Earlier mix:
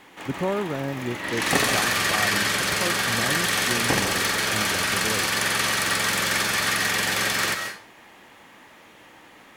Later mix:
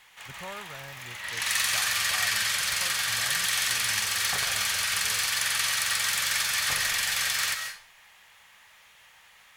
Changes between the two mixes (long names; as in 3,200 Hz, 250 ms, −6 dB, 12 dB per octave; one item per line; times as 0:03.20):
second sound: entry +2.80 s
master: add guitar amp tone stack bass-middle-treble 10-0-10